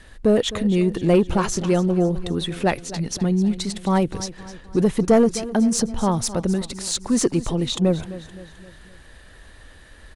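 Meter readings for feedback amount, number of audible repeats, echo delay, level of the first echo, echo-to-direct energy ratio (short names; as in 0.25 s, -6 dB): 49%, 4, 0.259 s, -15.5 dB, -14.5 dB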